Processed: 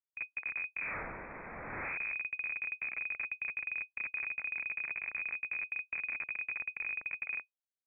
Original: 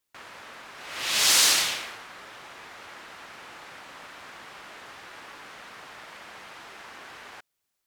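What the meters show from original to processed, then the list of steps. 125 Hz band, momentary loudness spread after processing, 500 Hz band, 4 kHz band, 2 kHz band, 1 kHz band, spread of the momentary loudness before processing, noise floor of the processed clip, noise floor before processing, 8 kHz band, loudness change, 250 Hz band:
n/a, 5 LU, -8.0 dB, under -40 dB, -0.5 dB, -10.5 dB, 20 LU, under -85 dBFS, -80 dBFS, under -40 dB, -16.0 dB, -6.0 dB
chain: flange 1.1 Hz, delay 7.8 ms, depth 8.5 ms, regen -25%; Schmitt trigger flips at -39.5 dBFS; inverted band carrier 2500 Hz; gain -2.5 dB

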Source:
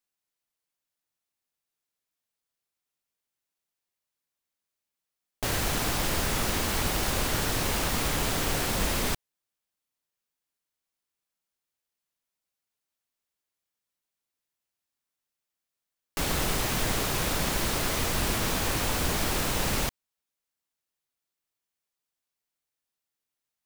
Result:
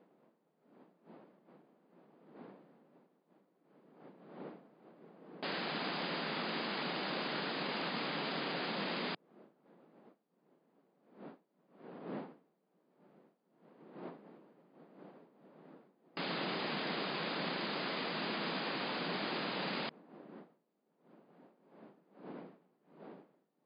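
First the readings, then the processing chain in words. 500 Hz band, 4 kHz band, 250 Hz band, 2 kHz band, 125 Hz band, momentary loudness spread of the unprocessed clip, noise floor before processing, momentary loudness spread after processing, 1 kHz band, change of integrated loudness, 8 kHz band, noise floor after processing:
-7.0 dB, -8.0 dB, -7.0 dB, -7.5 dB, -16.5 dB, 3 LU, under -85 dBFS, 19 LU, -7.5 dB, -11.0 dB, under -40 dB, -78 dBFS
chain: wind noise 460 Hz -47 dBFS; brick-wall FIR band-pass 150–5000 Hz; gain -7.5 dB

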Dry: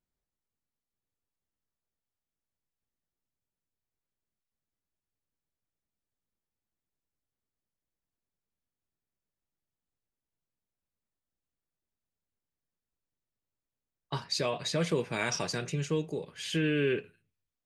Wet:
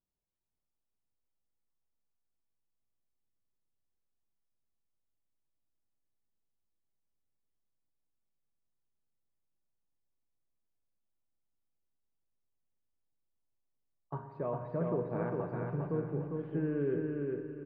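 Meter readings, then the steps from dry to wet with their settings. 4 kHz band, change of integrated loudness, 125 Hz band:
under -35 dB, -4.0 dB, -1.5 dB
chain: LPF 1200 Hz 24 dB/oct; feedback echo 0.403 s, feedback 32%, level -3.5 dB; spring tank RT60 2.1 s, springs 41/58 ms, chirp 30 ms, DRR 7.5 dB; gain -4.5 dB

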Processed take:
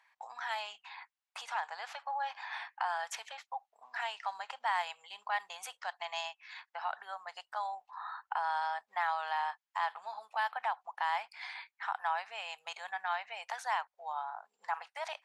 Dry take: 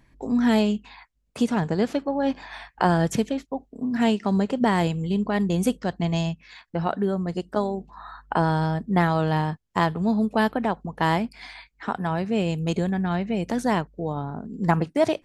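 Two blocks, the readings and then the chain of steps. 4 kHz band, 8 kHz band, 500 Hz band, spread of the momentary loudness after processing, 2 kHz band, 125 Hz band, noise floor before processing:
-7.5 dB, -10.0 dB, -21.5 dB, 10 LU, -6.0 dB, under -40 dB, -66 dBFS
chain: LPF 3000 Hz 6 dB/oct; limiter -18.5 dBFS, peak gain reduction 11.5 dB; elliptic high-pass 800 Hz, stop band 60 dB

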